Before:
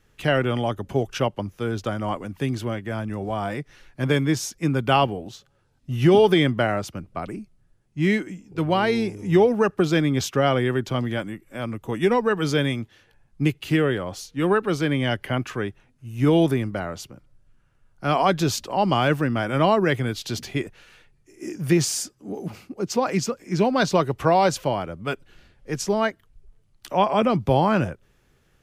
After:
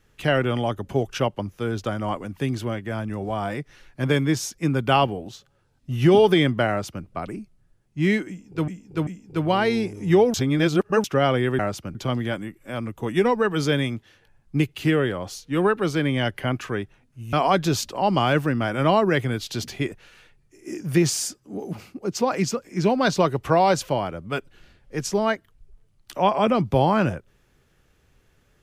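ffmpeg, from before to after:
-filter_complex "[0:a]asplit=8[a][b][c][d][e][f][g][h];[a]atrim=end=8.682[i];[b]atrim=start=8.288:end=8.682[j];[c]atrim=start=8.288:end=9.562[k];[d]atrim=start=9.558:end=10.262,asetpts=PTS-STARTPTS,areverse[l];[e]atrim=start=10.258:end=10.812[m];[f]atrim=start=6.688:end=7.052[n];[g]atrim=start=10.808:end=16.192[o];[h]atrim=start=18.078[p];[i][j]acrossfade=d=0.004:c1=hsin:c2=hsin[q];[q][k]acrossfade=d=0.004:c1=hsin:c2=hsin[r];[r][l]acrossfade=d=0.004:c1=hsin:c2=hsin[s];[s][m]acrossfade=d=0.004:c1=hsin:c2=hsin[t];[t][n]acrossfade=d=0.004:c1=hsin:c2=hsin[u];[u][o]acrossfade=d=0.004:c1=hsin:c2=hsin[v];[v][p]acrossfade=d=0.004:c1=hsin:c2=hsin"

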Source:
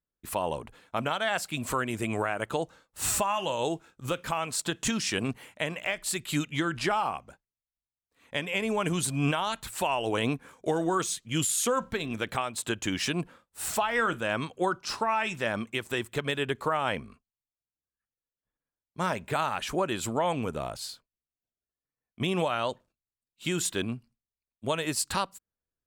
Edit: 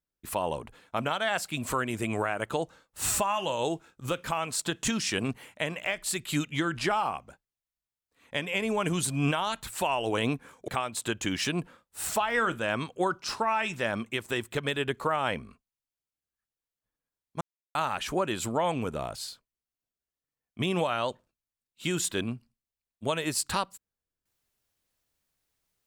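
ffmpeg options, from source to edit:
-filter_complex "[0:a]asplit=4[a][b][c][d];[a]atrim=end=10.682[e];[b]atrim=start=12.288:end=19.02,asetpts=PTS-STARTPTS,afade=t=out:st=6.728:d=0.004:c=hsin[f];[c]atrim=start=19.02:end=19.36,asetpts=PTS-STARTPTS,volume=0[g];[d]atrim=start=19.36,asetpts=PTS-STARTPTS,afade=t=in:d=0.004:c=hsin[h];[f][g][h]concat=n=3:v=0:a=1[i];[e][i]acrossfade=d=0.004:c1=hsin:c2=hsin"

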